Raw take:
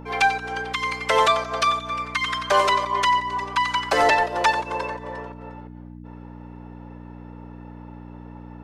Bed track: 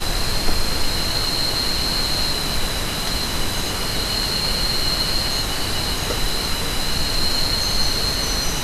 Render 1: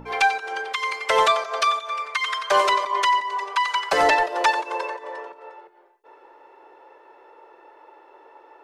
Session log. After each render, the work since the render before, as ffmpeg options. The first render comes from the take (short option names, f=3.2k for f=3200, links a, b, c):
-af "bandreject=f=60:t=h:w=4,bandreject=f=120:t=h:w=4,bandreject=f=180:t=h:w=4,bandreject=f=240:t=h:w=4,bandreject=f=300:t=h:w=4,bandreject=f=360:t=h:w=4,bandreject=f=420:t=h:w=4,bandreject=f=480:t=h:w=4"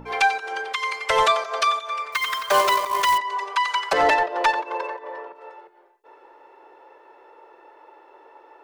-filter_complex "[0:a]asplit=3[a][b][c];[a]afade=t=out:st=0.77:d=0.02[d];[b]asubboost=boost=9:cutoff=120,afade=t=in:st=0.77:d=0.02,afade=t=out:st=1.22:d=0.02[e];[c]afade=t=in:st=1.22:d=0.02[f];[d][e][f]amix=inputs=3:normalize=0,asettb=1/sr,asplit=3[g][h][i];[g]atrim=end=2.124[j];[h]atrim=start=2.12:end=3.18,asetpts=PTS-STARTPTS,afade=t=in:d=0.004:c=qsin,afade=t=out:st=1.056:d=0.004:c=qsin,acrusher=bits=3:mode=log:mix=0:aa=0.000001[k];[i]atrim=start=3.176[l];[j][k]acrossfade=d=0.004:c1=hsin:c2=qsin[m];[m][l]acrossfade=d=0.004:c1=qsin:c2=hsin,asettb=1/sr,asplit=3[n][o][p];[n]atrim=end=3.934[q];[o]atrim=start=3.93:end=5.35,asetpts=PTS-STARTPTS,afade=t=in:d=0.004:c=qsin,afade=t=out:st=1.416:d=0.004:c=qsin,adynamicsmooth=sensitivity=1:basefreq=3.2k[r];[p]atrim=start=5.346[s];[q][r]acrossfade=d=0.004:c1=hsin:c2=qsin[t];[t][s]acrossfade=d=0.004:c1=qsin:c2=hsin"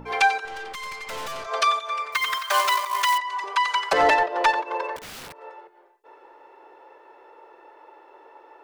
-filter_complex "[0:a]asettb=1/sr,asplit=3[a][b][c];[a]atrim=end=0.454[d];[b]atrim=start=0.45:end=1.47,asetpts=PTS-STARTPTS,afade=t=in:d=0.004:c=qsin,afade=t=out:st=1.016:d=0.004:c=qsin,aeval=exprs='(tanh(39.8*val(0)+0.45)-tanh(0.45))/39.8':c=same[e];[c]atrim=start=1.466[f];[d][e]acrossfade=d=0.004:c1=hsin:c2=qsin[g];[g][f]acrossfade=d=0.004:c1=qsin:c2=hsin,asettb=1/sr,asplit=3[h][i][j];[h]atrim=end=2.384[k];[i]atrim=start=2.38:end=3.44,asetpts=PTS-STARTPTS,afade=t=in:d=0.004:c=qsin,afade=t=out:st=1.056:d=0.004:c=qsin,highpass=930[l];[j]atrim=start=3.436[m];[k][l]acrossfade=d=0.004:c1=hsin:c2=qsin[n];[n][m]acrossfade=d=0.004:c1=qsin:c2=hsin,asettb=1/sr,asplit=3[o][p][q];[o]atrim=end=4.964[r];[p]atrim=start=4.96:end=5.38,asetpts=PTS-STARTPTS,afade=t=in:d=0.004:c=qsin,afade=t=out:st=0.416:d=0.004:c=qsin,aeval=exprs='(mod(53.1*val(0)+1,2)-1)/53.1':c=same[s];[q]atrim=start=5.376[t];[r][s]acrossfade=d=0.004:c1=hsin:c2=qsin[u];[u][t]acrossfade=d=0.004:c1=qsin:c2=hsin"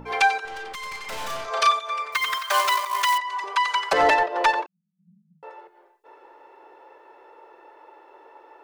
-filter_complex "[0:a]asettb=1/sr,asplit=3[a][b][c];[a]atrim=end=0.904[d];[b]atrim=start=0.9:end=1.71,asetpts=PTS-STARTPTS,afade=t=in:d=0.004:c=qsin,afade=t=out:st=0.806:d=0.004:c=qsin,asplit=2[e][f];[f]adelay=35,volume=-4dB[g];[e][g]amix=inputs=2:normalize=0,atrim=end_sample=35721[h];[c]atrim=start=1.706[i];[d][h]acrossfade=d=0.004:c1=hsin:c2=qsin[j];[j][i]acrossfade=d=0.004:c1=qsin:c2=hsin,asettb=1/sr,asplit=3[k][l][m];[k]atrim=end=4.664[n];[l]atrim=start=4.66:end=5.43,asetpts=PTS-STARTPTS,afade=t=in:d=0.004:c=qsin,afade=t=out:st=0.766:d=0.004:c=qsin,asuperpass=centerf=180:order=20:qfactor=3.3[o];[m]atrim=start=5.426[p];[n][o]acrossfade=d=0.004:c1=hsin:c2=qsin[q];[q][p]acrossfade=d=0.004:c1=qsin:c2=hsin"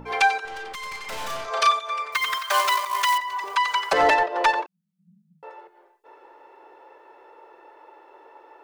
-filter_complex "[0:a]asettb=1/sr,asplit=3[a][b][c];[a]atrim=end=2.844[d];[b]atrim=start=2.84:end=4.12,asetpts=PTS-STARTPTS,afade=t=in:d=0.004:c=qsin,afade=t=out:st=1.276:d=0.004:c=qsin,aeval=exprs='val(0)*gte(abs(val(0)),0.00668)':c=same[e];[c]atrim=start=4.116[f];[d][e]acrossfade=d=0.004:c1=hsin:c2=qsin[g];[g][f]acrossfade=d=0.004:c1=qsin:c2=hsin"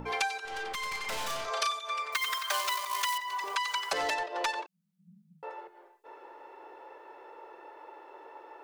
-filter_complex "[0:a]acrossover=split=2800|5800[a][b][c];[a]acompressor=threshold=-33dB:ratio=4[d];[b]acompressor=threshold=-37dB:ratio=4[e];[c]acompressor=threshold=-37dB:ratio=4[f];[d][e][f]amix=inputs=3:normalize=0"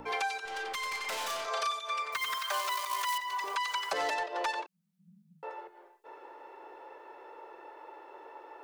-filter_complex "[0:a]acrossover=split=270|1600[a][b][c];[a]acompressor=threshold=-58dB:ratio=6[d];[c]alimiter=level_in=3dB:limit=-24dB:level=0:latency=1:release=79,volume=-3dB[e];[d][b][e]amix=inputs=3:normalize=0"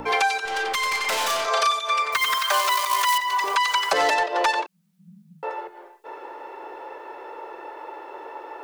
-af "volume=11.5dB"